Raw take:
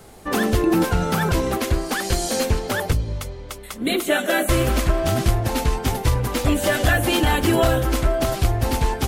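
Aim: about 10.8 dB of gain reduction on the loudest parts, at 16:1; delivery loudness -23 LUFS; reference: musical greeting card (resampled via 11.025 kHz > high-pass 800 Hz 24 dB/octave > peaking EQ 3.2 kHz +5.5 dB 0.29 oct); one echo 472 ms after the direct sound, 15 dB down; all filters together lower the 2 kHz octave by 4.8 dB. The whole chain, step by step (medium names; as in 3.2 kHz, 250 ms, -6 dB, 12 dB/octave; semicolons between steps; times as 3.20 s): peaking EQ 2 kHz -6.5 dB; compression 16:1, threshold -24 dBFS; delay 472 ms -15 dB; resampled via 11.025 kHz; high-pass 800 Hz 24 dB/octave; peaking EQ 3.2 kHz +5.5 dB 0.29 oct; trim +13 dB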